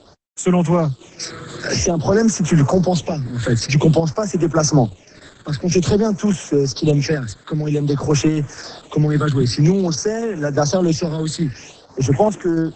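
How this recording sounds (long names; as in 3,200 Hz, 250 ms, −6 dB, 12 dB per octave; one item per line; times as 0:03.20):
a quantiser's noise floor 8 bits, dither none
phaser sweep stages 8, 0.51 Hz, lowest notch 770–4,300 Hz
sample-and-hold tremolo
Opus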